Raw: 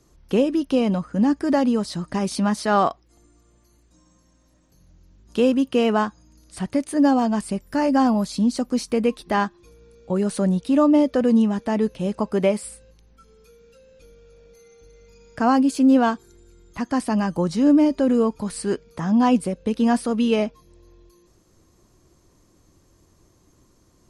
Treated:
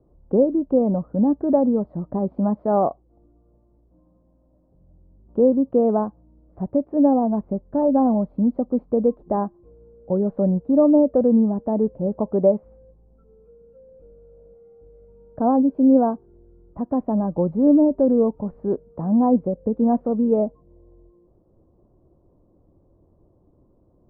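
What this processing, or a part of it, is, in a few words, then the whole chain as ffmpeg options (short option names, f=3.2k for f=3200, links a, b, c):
under water: -af "lowpass=f=830:w=0.5412,lowpass=f=830:w=1.3066,equalizer=f=560:t=o:w=0.51:g=4.5"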